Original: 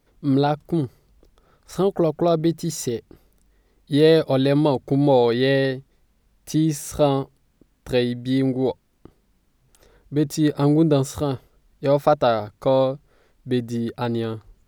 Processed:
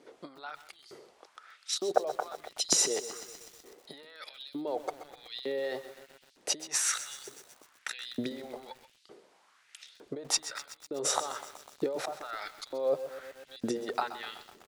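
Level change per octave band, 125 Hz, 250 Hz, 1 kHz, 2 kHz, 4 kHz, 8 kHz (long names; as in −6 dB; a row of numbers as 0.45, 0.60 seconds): −31.5, −21.0, −11.0, −8.0, −3.0, +5.5 decibels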